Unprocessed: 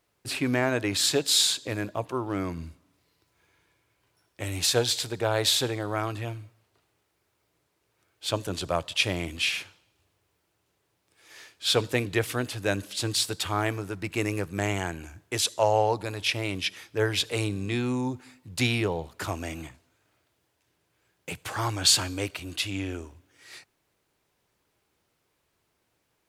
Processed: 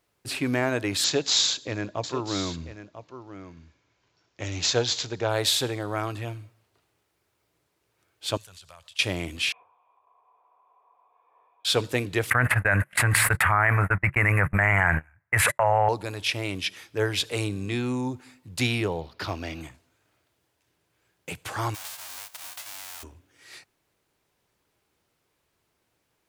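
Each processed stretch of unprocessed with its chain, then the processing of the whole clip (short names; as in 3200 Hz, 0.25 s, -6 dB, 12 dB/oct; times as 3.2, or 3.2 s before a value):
1.04–5.29 echo 0.994 s -12.5 dB + careless resampling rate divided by 3×, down none, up filtered
8.37–8.99 passive tone stack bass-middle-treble 10-0-10 + compressor 4:1, threshold -46 dBFS
9.52–11.65 switching spikes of -29 dBFS + vocal tract filter a + small resonant body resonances 470/980 Hz, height 14 dB, ringing for 30 ms
12.3–15.89 gate -35 dBFS, range -54 dB + EQ curve 140 Hz 0 dB, 350 Hz -16 dB, 580 Hz -3 dB, 2000 Hz +10 dB, 3500 Hz -24 dB, 5800 Hz -27 dB, 9600 Hz -10 dB + fast leveller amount 100%
19.01–19.61 block floating point 7-bit + resonant high shelf 6100 Hz -8.5 dB, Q 3
21.74–23.02 spectral whitening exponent 0.1 + resonant low shelf 500 Hz -13 dB, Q 1.5 + compressor 12:1, threshold -35 dBFS
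whole clip: dry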